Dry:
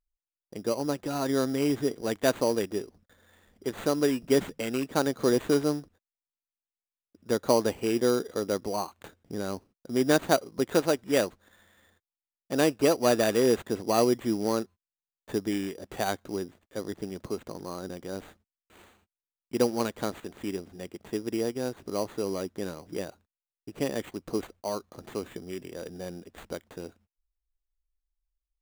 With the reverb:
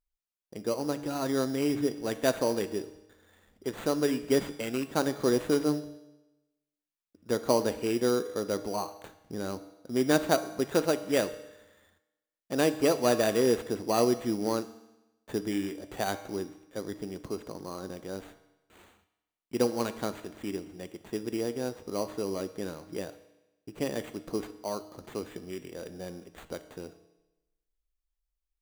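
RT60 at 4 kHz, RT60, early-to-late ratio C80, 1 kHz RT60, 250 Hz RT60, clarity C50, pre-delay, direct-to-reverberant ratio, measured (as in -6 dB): 0.95 s, 1.0 s, 15.5 dB, 1.0 s, 1.0 s, 13.5 dB, 6 ms, 10.5 dB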